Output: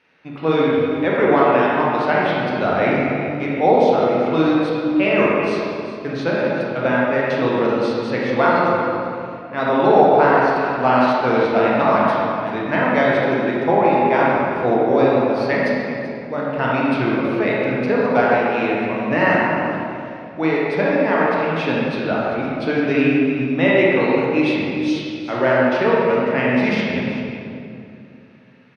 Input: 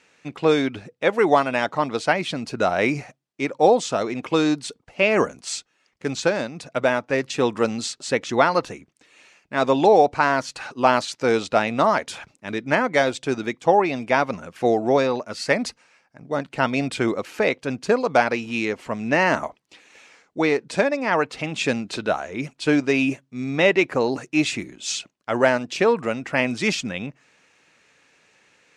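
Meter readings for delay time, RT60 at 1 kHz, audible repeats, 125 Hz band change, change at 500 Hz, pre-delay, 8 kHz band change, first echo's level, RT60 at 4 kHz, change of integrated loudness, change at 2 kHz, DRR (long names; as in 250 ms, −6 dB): 386 ms, 2.4 s, 1, +6.0 dB, +4.5 dB, 23 ms, below −15 dB, −12.5 dB, 1.7 s, +4.0 dB, +3.5 dB, −6.0 dB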